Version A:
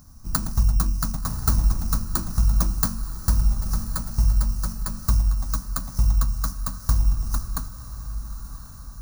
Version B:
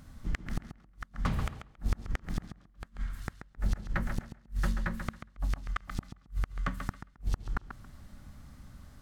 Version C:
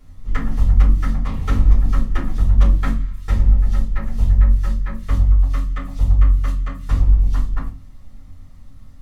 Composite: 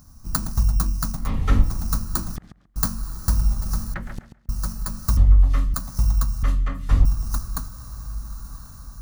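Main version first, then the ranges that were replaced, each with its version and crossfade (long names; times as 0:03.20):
A
0:01.23–0:01.67: punch in from C, crossfade 0.16 s
0:02.36–0:02.76: punch in from B
0:03.94–0:04.49: punch in from B
0:05.17–0:05.74: punch in from C
0:06.43–0:07.05: punch in from C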